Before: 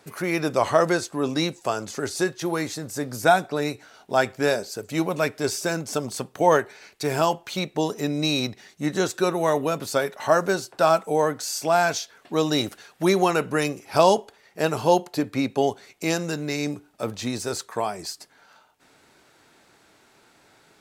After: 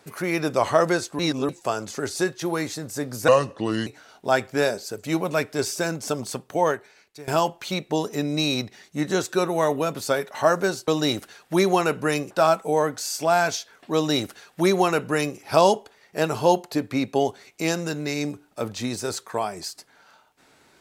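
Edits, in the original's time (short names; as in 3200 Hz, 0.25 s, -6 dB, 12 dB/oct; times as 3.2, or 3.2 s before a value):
1.19–1.49 reverse
3.28–3.72 speed 75%
6.12–7.13 fade out, to -19 dB
12.37–13.8 copy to 10.73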